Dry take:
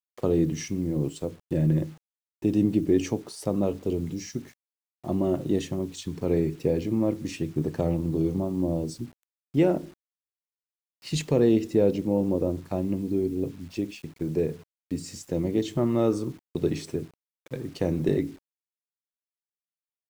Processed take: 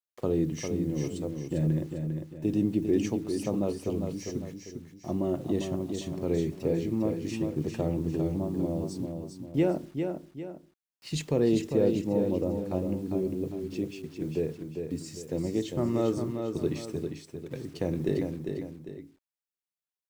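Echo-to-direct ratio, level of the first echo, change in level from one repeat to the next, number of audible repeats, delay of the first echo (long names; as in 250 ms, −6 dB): −5.5 dB, −6.0 dB, −8.0 dB, 2, 400 ms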